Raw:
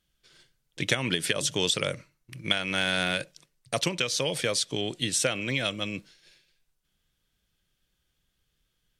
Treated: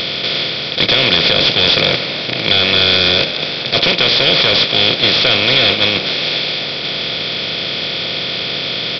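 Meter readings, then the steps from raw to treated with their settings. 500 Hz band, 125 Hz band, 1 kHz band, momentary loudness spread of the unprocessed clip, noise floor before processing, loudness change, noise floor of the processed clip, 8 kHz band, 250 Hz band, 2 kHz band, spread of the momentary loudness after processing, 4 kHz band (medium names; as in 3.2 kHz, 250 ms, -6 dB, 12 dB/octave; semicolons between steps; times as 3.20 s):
+13.5 dB, +11.5 dB, +15.0 dB, 9 LU, -77 dBFS, +15.0 dB, -22 dBFS, no reading, +11.5 dB, +15.5 dB, 8 LU, +20.5 dB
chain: spectral levelling over time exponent 0.2; band-stop 1.6 kHz, Q 5.3; gate -19 dBFS, range -8 dB; treble shelf 2.8 kHz +10.5 dB; in parallel at +3 dB: compression, threshold -26 dBFS, peak gain reduction 17 dB; on the sum: hard clipper -10 dBFS, distortion -8 dB; on a send: frequency-shifting echo 253 ms, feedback 60%, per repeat +65 Hz, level -13.5 dB; on the sum: resampled via 11.025 kHz; trim +4.5 dB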